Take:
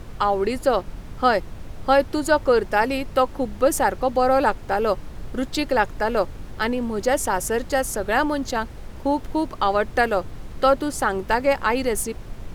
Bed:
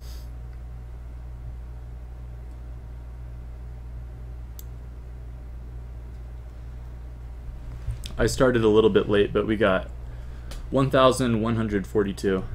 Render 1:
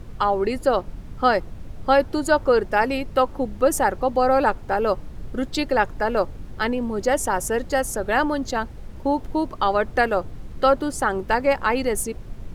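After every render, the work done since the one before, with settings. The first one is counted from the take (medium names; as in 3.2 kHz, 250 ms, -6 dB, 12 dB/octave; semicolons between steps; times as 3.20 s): noise reduction 6 dB, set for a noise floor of -38 dBFS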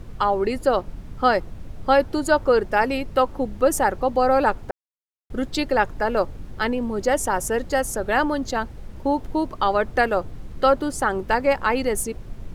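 4.71–5.30 s: mute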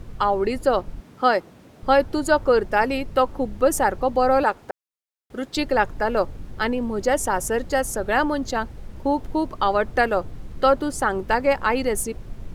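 1.00–1.83 s: high-pass 210 Hz; 4.43–5.57 s: high-pass 350 Hz 6 dB/octave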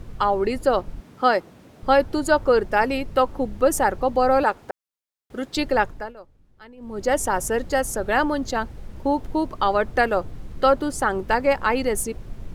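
5.78–7.13 s: dip -22 dB, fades 0.36 s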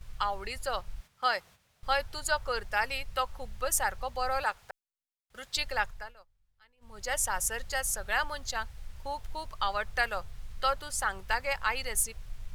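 gate -40 dBFS, range -9 dB; amplifier tone stack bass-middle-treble 10-0-10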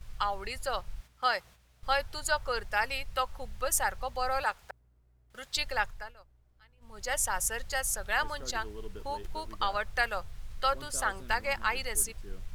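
add bed -27.5 dB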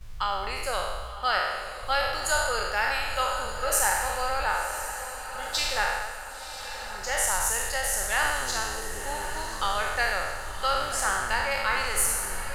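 spectral sustain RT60 1.25 s; on a send: echo that smears into a reverb 1036 ms, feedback 56%, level -10 dB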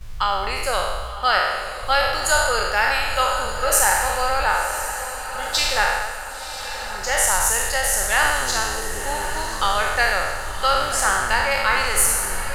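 trim +7 dB; peak limiter -3 dBFS, peak gain reduction 1.5 dB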